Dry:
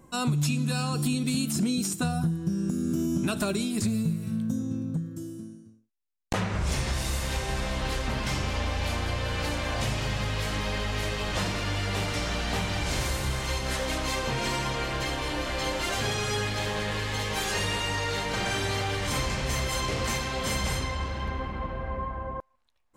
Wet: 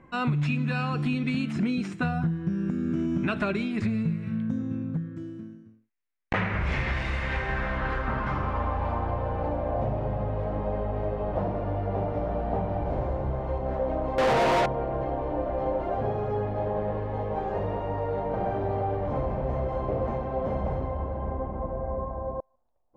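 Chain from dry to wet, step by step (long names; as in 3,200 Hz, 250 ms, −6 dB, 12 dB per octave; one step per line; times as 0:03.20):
low-pass filter sweep 2,100 Hz → 680 Hz, 0:07.16–0:09.69
0:14.18–0:14.66: mid-hump overdrive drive 33 dB, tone 3,500 Hz, clips at −16 dBFS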